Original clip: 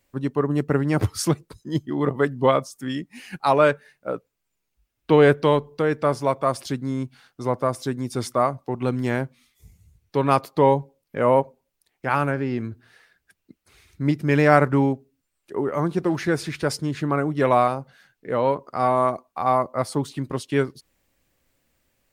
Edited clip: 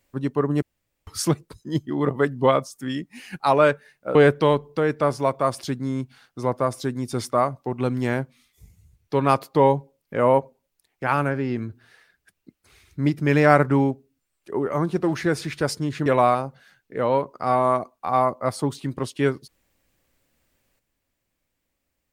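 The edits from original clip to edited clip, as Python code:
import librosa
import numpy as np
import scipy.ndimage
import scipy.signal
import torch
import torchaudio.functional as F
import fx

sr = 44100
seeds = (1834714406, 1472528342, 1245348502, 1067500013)

y = fx.edit(x, sr, fx.room_tone_fill(start_s=0.62, length_s=0.45),
    fx.cut(start_s=4.15, length_s=1.02),
    fx.cut(start_s=17.08, length_s=0.31), tone=tone)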